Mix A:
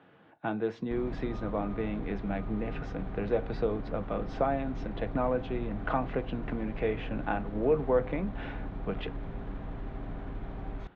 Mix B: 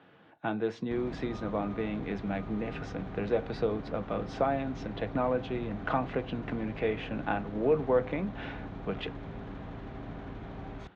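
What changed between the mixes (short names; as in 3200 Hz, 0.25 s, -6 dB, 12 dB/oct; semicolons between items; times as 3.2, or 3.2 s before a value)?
background: add HPF 65 Hz 12 dB/oct; master: add high shelf 4600 Hz +10.5 dB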